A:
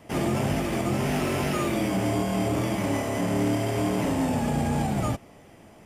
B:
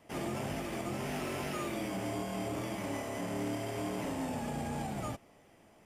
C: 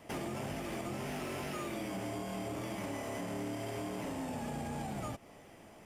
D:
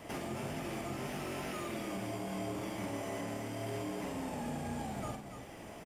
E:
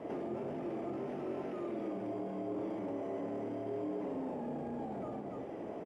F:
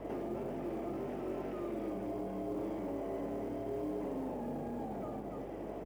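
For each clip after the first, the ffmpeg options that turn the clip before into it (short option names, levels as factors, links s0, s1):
-af "equalizer=f=89:w=0.35:g=-5,volume=0.355"
-af "acompressor=threshold=0.00794:ratio=10,asoftclip=type=hard:threshold=0.0112,volume=2"
-af "alimiter=level_in=6.31:limit=0.0631:level=0:latency=1:release=372,volume=0.158,aecho=1:1:46|288:0.501|0.398,volume=1.88"
-af "alimiter=level_in=5.01:limit=0.0631:level=0:latency=1:release=19,volume=0.2,bandpass=f=400:t=q:w=1.4:csg=0,volume=3.35"
-af "acrusher=bits=8:mode=log:mix=0:aa=0.000001,aeval=exprs='val(0)+0.002*(sin(2*PI*50*n/s)+sin(2*PI*2*50*n/s)/2+sin(2*PI*3*50*n/s)/3+sin(2*PI*4*50*n/s)/4+sin(2*PI*5*50*n/s)/5)':c=same"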